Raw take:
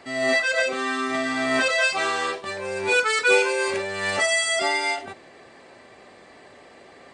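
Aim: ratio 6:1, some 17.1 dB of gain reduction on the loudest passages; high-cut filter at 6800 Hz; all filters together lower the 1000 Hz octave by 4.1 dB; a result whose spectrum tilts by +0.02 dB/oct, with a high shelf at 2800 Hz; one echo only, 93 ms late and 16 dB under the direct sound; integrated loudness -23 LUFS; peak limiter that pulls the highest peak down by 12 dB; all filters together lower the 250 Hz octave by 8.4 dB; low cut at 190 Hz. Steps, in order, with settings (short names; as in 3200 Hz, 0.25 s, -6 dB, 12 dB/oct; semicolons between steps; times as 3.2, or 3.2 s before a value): HPF 190 Hz; LPF 6800 Hz; bell 250 Hz -9 dB; bell 1000 Hz -6.5 dB; high shelf 2800 Hz +8.5 dB; compressor 6:1, threshold -34 dBFS; limiter -35 dBFS; echo 93 ms -16 dB; gain +19.5 dB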